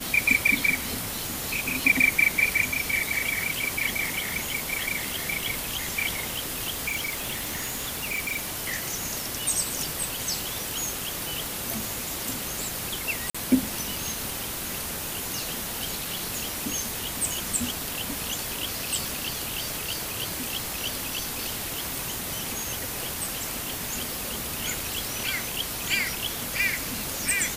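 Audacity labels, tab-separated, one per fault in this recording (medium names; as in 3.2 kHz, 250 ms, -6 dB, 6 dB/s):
6.870000	8.540000	clipped -25 dBFS
13.300000	13.350000	dropout 45 ms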